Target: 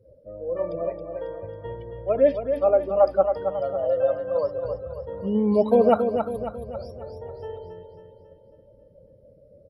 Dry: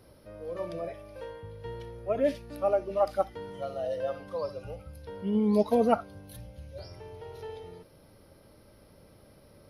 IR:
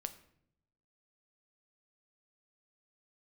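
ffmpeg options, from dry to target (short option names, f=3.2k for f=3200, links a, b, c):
-filter_complex "[0:a]equalizer=f=530:t=o:w=0.4:g=7.5,afftdn=nr=29:nf=-46,asplit=2[a][b];[b]aecho=0:1:273|546|819|1092|1365|1638:0.447|0.214|0.103|0.0494|0.0237|0.0114[c];[a][c]amix=inputs=2:normalize=0,volume=3dB"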